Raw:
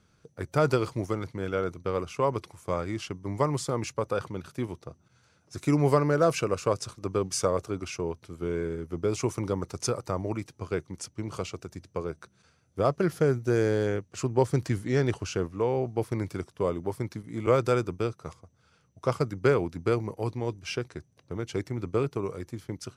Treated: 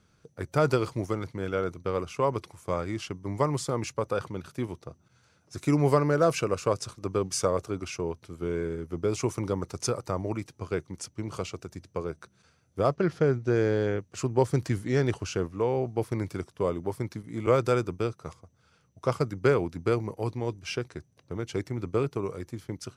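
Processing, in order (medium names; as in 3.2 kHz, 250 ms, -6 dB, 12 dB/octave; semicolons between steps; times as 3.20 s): 12.94–13.99 s: low-pass 4.8 kHz 12 dB/octave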